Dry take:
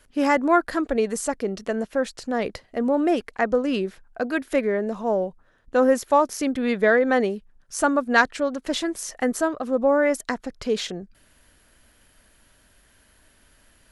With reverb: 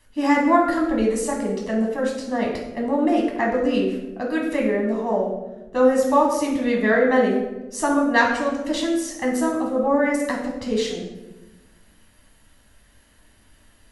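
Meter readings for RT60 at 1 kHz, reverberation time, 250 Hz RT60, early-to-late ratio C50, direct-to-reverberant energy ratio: 0.85 s, 1.1 s, 1.6 s, 4.0 dB, -1.5 dB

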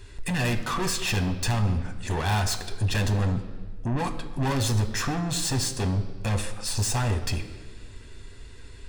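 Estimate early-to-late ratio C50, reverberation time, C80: 11.0 dB, 1.5 s, 12.5 dB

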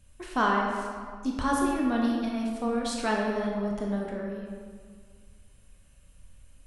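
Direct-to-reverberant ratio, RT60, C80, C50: -2.0 dB, 1.9 s, 2.5 dB, 1.0 dB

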